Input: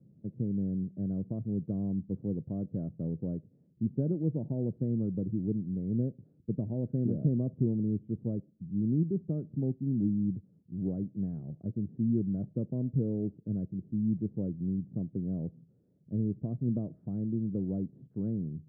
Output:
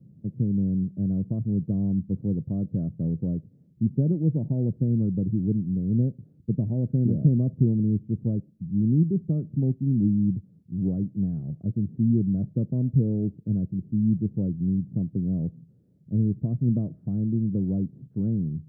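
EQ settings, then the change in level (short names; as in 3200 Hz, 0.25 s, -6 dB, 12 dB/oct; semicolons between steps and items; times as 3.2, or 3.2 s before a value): tone controls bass +8 dB, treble 0 dB; +1.5 dB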